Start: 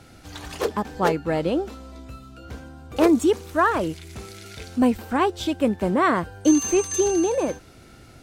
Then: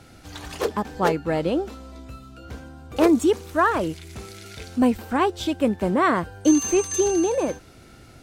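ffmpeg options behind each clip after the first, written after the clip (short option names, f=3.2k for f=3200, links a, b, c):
-af anull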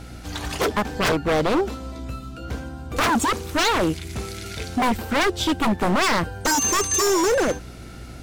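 -af "aeval=exprs='val(0)+0.00501*(sin(2*PI*60*n/s)+sin(2*PI*2*60*n/s)/2+sin(2*PI*3*60*n/s)/3+sin(2*PI*4*60*n/s)/4+sin(2*PI*5*60*n/s)/5)':c=same,aeval=exprs='0.0891*(abs(mod(val(0)/0.0891+3,4)-2)-1)':c=same,volume=6.5dB"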